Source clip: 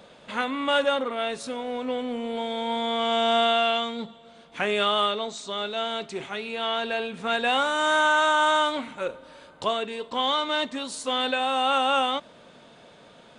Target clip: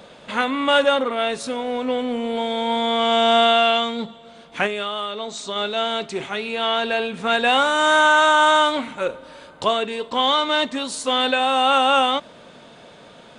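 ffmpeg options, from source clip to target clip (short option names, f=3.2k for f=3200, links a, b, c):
-filter_complex "[0:a]asettb=1/sr,asplit=3[a][b][c];[a]atrim=end=4.664[d];[b]atrim=start=4.66:end=5.56,asetpts=PTS-STARTPTS,afade=t=in:d=0.004:c=qsin,afade=t=out:st=0.896:d=0.004:c=qsin,acompressor=threshold=-30dB:ratio=6[e];[c]atrim=start=5.556[f];[d][e]acrossfade=d=0.004:c1=hsin:c2=qsin[g];[g][f]acrossfade=d=0.004:c1=qsin:c2=hsin,volume=6dB"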